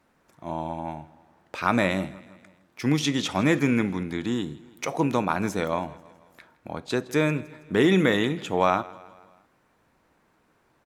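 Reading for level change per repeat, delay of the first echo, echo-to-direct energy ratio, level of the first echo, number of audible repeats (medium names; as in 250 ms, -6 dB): -5.5 dB, 162 ms, -19.0 dB, -20.5 dB, 3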